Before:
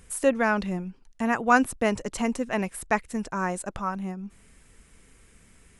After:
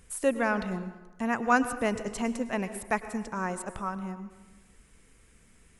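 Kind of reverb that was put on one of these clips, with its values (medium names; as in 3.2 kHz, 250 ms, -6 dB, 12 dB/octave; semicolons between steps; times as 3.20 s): plate-style reverb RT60 1.2 s, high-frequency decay 0.55×, pre-delay 90 ms, DRR 11.5 dB; trim -4 dB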